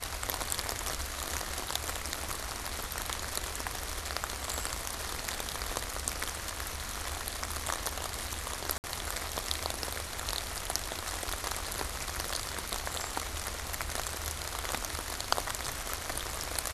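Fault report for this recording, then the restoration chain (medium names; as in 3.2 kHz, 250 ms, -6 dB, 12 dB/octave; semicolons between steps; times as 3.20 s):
8.78–8.84 s: dropout 59 ms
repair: interpolate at 8.78 s, 59 ms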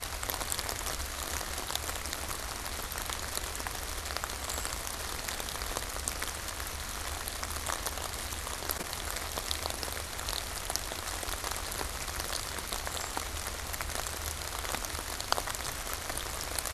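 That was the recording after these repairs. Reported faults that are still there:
nothing left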